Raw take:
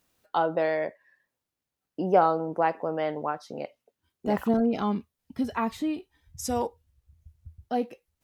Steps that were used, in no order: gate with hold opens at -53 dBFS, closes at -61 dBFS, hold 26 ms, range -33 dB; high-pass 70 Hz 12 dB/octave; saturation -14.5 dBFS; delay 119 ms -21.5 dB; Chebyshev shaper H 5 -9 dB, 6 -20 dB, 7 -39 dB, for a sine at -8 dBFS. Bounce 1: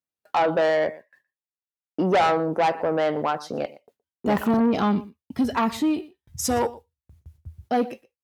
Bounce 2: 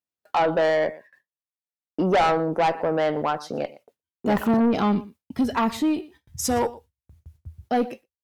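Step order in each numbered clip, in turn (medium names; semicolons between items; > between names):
gate with hold > delay > Chebyshev shaper > saturation > high-pass; delay > gate with hold > high-pass > Chebyshev shaper > saturation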